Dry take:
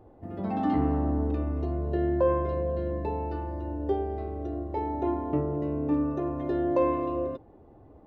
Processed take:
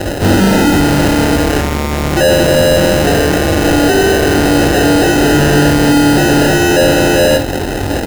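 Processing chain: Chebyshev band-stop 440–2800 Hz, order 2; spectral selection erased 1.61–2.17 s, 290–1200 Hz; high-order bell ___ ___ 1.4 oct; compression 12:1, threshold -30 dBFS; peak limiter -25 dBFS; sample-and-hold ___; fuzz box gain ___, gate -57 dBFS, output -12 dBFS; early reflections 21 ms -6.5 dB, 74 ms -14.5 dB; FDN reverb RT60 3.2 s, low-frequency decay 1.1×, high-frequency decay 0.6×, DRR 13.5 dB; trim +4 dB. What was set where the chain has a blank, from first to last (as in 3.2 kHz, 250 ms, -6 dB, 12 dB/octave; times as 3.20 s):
880 Hz, +12 dB, 39×, 50 dB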